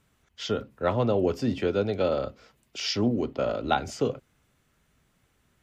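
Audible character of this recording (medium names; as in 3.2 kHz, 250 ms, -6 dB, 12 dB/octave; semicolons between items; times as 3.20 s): noise floor -70 dBFS; spectral tilt -5.0 dB/octave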